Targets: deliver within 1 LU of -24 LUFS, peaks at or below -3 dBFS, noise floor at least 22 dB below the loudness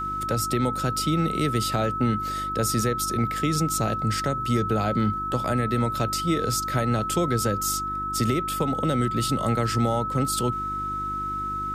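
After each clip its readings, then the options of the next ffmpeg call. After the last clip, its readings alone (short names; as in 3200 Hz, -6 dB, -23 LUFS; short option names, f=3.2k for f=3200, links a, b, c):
hum 50 Hz; harmonics up to 350 Hz; hum level -35 dBFS; steady tone 1300 Hz; tone level -27 dBFS; loudness -25.0 LUFS; peak -11.5 dBFS; loudness target -24.0 LUFS
-> -af "bandreject=f=50:t=h:w=4,bandreject=f=100:t=h:w=4,bandreject=f=150:t=h:w=4,bandreject=f=200:t=h:w=4,bandreject=f=250:t=h:w=4,bandreject=f=300:t=h:w=4,bandreject=f=350:t=h:w=4"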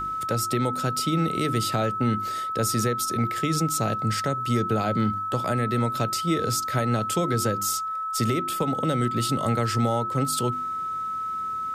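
hum none; steady tone 1300 Hz; tone level -27 dBFS
-> -af "bandreject=f=1.3k:w=30"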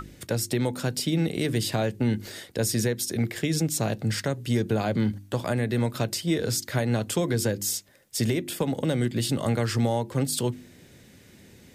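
steady tone none; loudness -27.0 LUFS; peak -13.5 dBFS; loudness target -24.0 LUFS
-> -af "volume=3dB"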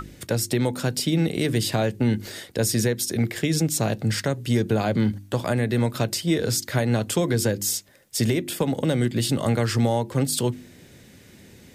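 loudness -24.0 LUFS; peak -10.5 dBFS; noise floor -50 dBFS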